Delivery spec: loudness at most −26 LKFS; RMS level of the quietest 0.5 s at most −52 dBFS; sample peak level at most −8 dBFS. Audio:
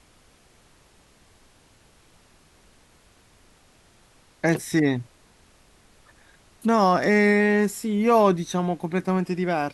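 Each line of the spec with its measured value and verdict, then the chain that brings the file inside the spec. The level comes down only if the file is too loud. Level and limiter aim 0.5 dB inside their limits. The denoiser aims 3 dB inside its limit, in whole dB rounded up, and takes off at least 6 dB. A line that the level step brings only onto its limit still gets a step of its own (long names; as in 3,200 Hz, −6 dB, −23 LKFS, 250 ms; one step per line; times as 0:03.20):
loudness −22.0 LKFS: out of spec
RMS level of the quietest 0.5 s −57 dBFS: in spec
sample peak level −7.0 dBFS: out of spec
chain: level −4.5 dB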